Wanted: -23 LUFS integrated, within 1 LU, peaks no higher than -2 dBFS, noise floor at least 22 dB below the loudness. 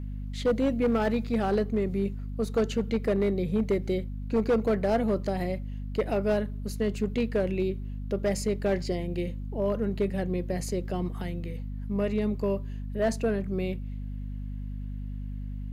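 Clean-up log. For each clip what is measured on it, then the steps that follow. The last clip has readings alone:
clipped samples 1.1%; clipping level -19.0 dBFS; hum 50 Hz; highest harmonic 250 Hz; hum level -32 dBFS; loudness -29.5 LUFS; peak level -19.0 dBFS; loudness target -23.0 LUFS
-> clip repair -19 dBFS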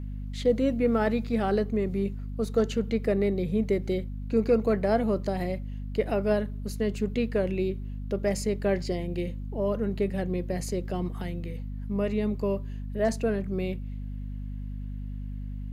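clipped samples 0.0%; hum 50 Hz; highest harmonic 250 Hz; hum level -32 dBFS
-> de-hum 50 Hz, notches 5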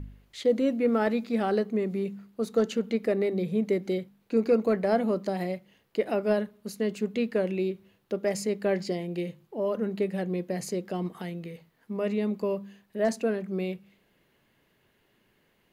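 hum not found; loudness -29.0 LUFS; peak level -11.5 dBFS; loudness target -23.0 LUFS
-> trim +6 dB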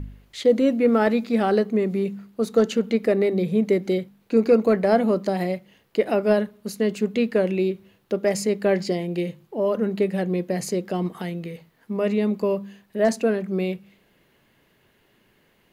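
loudness -23.0 LUFS; peak level -5.5 dBFS; noise floor -63 dBFS

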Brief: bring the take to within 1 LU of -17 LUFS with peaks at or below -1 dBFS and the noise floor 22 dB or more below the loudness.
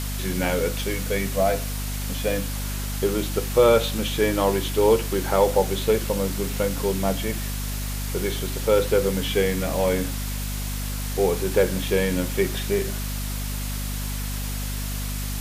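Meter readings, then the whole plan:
hum 50 Hz; highest harmonic 250 Hz; hum level -27 dBFS; noise floor -29 dBFS; noise floor target -46 dBFS; loudness -24.0 LUFS; peak level -6.0 dBFS; loudness target -17.0 LUFS
-> hum notches 50/100/150/200/250 Hz; noise reduction 17 dB, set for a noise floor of -29 dBFS; trim +7 dB; peak limiter -1 dBFS

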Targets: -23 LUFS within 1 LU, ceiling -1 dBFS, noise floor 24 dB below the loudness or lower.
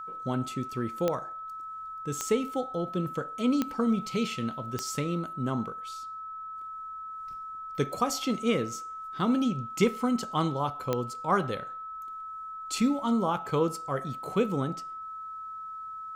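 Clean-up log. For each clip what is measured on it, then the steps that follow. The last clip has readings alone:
clicks found 5; steady tone 1.3 kHz; tone level -37 dBFS; loudness -31.0 LUFS; peak level -12.0 dBFS; loudness target -23.0 LUFS
-> de-click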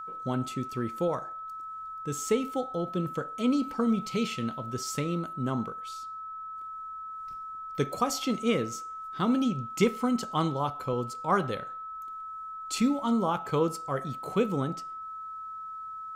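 clicks found 0; steady tone 1.3 kHz; tone level -37 dBFS
-> band-stop 1.3 kHz, Q 30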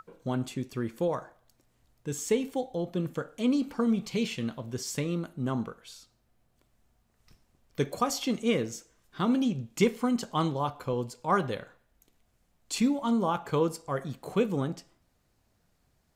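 steady tone not found; loudness -30.5 LUFS; peak level -12.0 dBFS; loudness target -23.0 LUFS
-> trim +7.5 dB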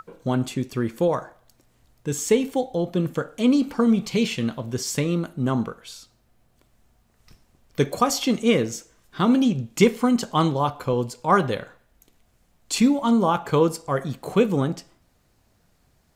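loudness -23.0 LUFS; peak level -4.5 dBFS; noise floor -64 dBFS

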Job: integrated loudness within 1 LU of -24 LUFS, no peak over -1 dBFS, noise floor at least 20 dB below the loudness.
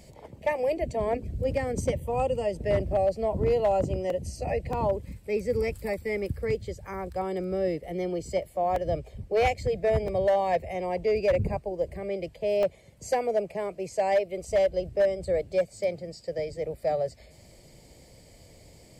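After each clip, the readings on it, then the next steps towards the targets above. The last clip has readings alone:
clipped samples 0.6%; clipping level -17.5 dBFS; dropouts 5; longest dropout 2.4 ms; loudness -28.5 LUFS; peak level -17.5 dBFS; loudness target -24.0 LUFS
-> clip repair -17.5 dBFS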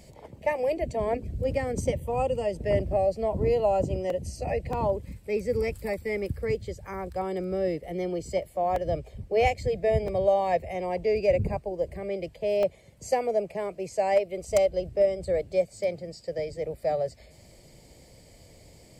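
clipped samples 0.0%; dropouts 5; longest dropout 2.4 ms
-> interpolate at 4.10/4.73/8.76/10.08/12.63 s, 2.4 ms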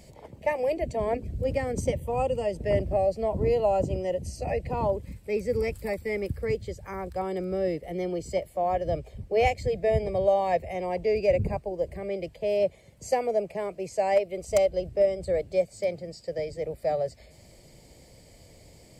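dropouts 0; loudness -28.0 LUFS; peak level -8.5 dBFS; loudness target -24.0 LUFS
-> trim +4 dB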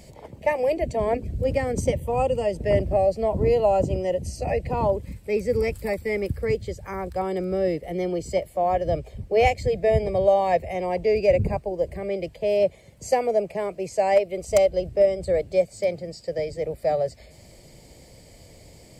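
loudness -24.0 LUFS; peak level -4.5 dBFS; noise floor -50 dBFS

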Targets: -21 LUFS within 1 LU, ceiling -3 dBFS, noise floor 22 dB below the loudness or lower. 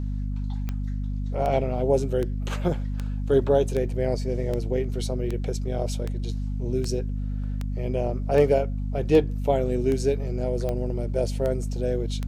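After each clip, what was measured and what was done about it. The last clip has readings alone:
clicks found 16; hum 50 Hz; highest harmonic 250 Hz; hum level -26 dBFS; loudness -26.0 LUFS; peak level -7.0 dBFS; loudness target -21.0 LUFS
-> de-click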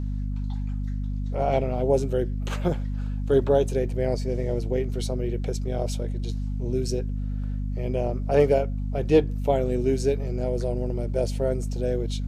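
clicks found 0; hum 50 Hz; highest harmonic 250 Hz; hum level -26 dBFS
-> hum notches 50/100/150/200/250 Hz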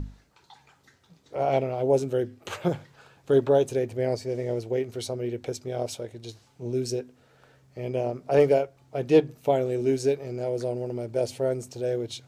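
hum not found; loudness -27.0 LUFS; peak level -7.5 dBFS; loudness target -21.0 LUFS
-> trim +6 dB; peak limiter -3 dBFS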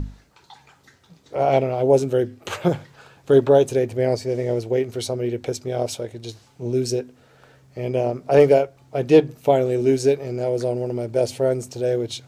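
loudness -21.0 LUFS; peak level -3.0 dBFS; noise floor -56 dBFS

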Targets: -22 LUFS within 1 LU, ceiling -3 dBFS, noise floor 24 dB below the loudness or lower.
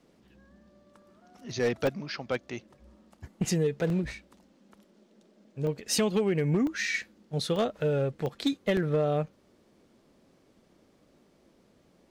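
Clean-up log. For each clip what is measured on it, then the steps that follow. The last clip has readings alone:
clipped samples 0.5%; clipping level -19.5 dBFS; dropouts 7; longest dropout 1.4 ms; loudness -29.5 LUFS; peak level -19.5 dBFS; loudness target -22.0 LUFS
-> clip repair -19.5 dBFS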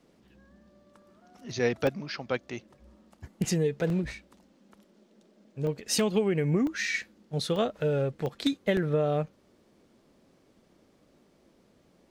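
clipped samples 0.0%; dropouts 7; longest dropout 1.4 ms
-> interpolate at 1.87/3.90/5.67/6.67/7.56/8.26/8.77 s, 1.4 ms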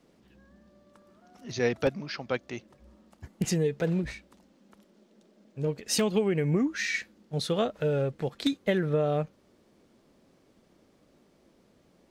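dropouts 0; loudness -29.5 LUFS; peak level -12.0 dBFS; loudness target -22.0 LUFS
-> trim +7.5 dB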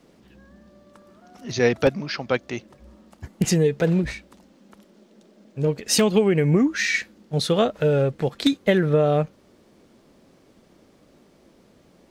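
loudness -22.0 LUFS; peak level -4.5 dBFS; noise floor -57 dBFS

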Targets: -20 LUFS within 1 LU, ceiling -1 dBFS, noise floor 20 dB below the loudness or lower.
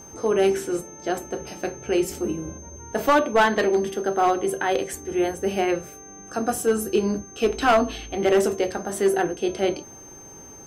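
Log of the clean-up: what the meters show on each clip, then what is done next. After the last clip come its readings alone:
clipped samples 0.7%; clipping level -12.0 dBFS; steady tone 6.3 kHz; tone level -43 dBFS; loudness -23.5 LUFS; peak level -12.0 dBFS; loudness target -20.0 LUFS
-> clip repair -12 dBFS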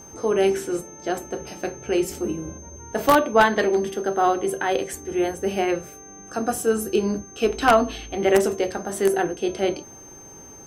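clipped samples 0.0%; steady tone 6.3 kHz; tone level -43 dBFS
-> band-stop 6.3 kHz, Q 30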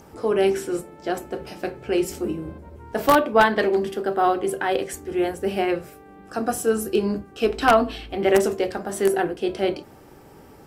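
steady tone not found; loudness -23.0 LUFS; peak level -3.0 dBFS; loudness target -20.0 LUFS
-> trim +3 dB; peak limiter -1 dBFS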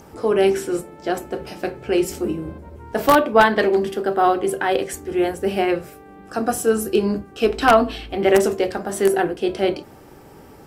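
loudness -20.0 LUFS; peak level -1.0 dBFS; noise floor -45 dBFS

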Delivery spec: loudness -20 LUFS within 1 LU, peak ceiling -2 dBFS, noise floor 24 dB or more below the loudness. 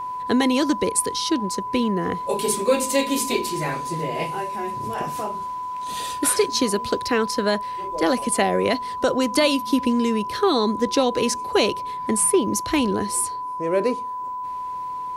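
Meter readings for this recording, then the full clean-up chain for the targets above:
steady tone 1 kHz; tone level -27 dBFS; loudness -22.5 LUFS; peak level -7.5 dBFS; loudness target -20.0 LUFS
-> band-stop 1 kHz, Q 30; trim +2.5 dB

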